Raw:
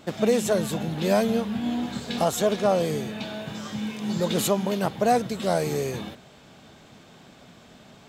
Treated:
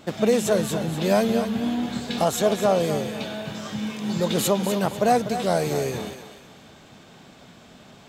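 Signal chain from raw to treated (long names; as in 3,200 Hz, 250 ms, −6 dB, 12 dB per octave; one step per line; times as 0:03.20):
feedback echo with a high-pass in the loop 247 ms, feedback 35%, high-pass 410 Hz, level −9 dB
level +1.5 dB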